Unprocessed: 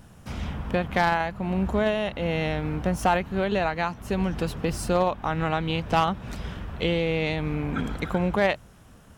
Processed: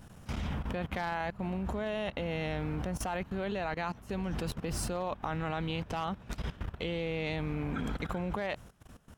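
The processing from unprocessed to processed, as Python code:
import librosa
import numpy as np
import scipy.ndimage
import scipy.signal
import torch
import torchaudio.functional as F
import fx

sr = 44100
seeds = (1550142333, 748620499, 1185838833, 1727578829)

y = fx.level_steps(x, sr, step_db=17)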